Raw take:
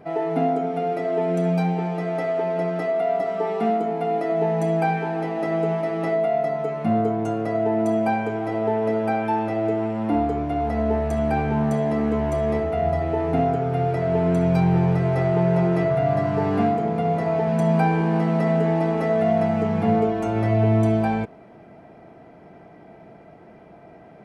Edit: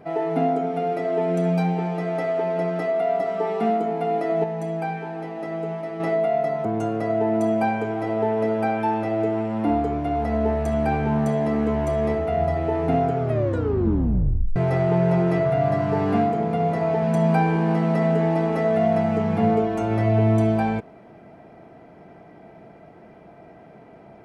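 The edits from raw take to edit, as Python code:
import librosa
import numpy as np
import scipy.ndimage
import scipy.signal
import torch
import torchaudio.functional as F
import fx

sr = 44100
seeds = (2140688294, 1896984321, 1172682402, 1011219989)

y = fx.edit(x, sr, fx.clip_gain(start_s=4.44, length_s=1.56, db=-6.0),
    fx.cut(start_s=6.65, length_s=0.45),
    fx.tape_stop(start_s=13.64, length_s=1.37), tone=tone)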